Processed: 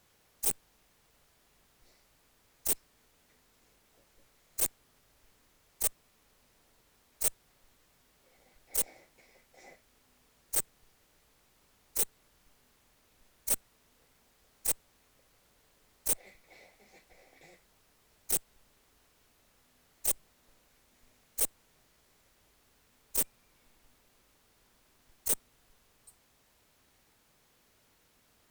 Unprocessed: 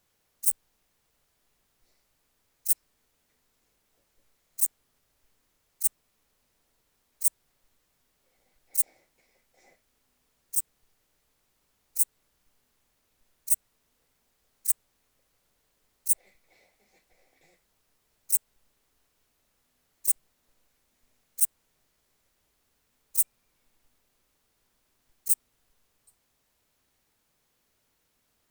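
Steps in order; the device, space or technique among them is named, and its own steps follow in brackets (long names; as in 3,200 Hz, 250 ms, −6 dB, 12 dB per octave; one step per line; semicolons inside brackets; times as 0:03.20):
tube preamp driven hard (tube saturation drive 26 dB, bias 0.3; high-shelf EQ 5,700 Hz −4 dB)
level +8 dB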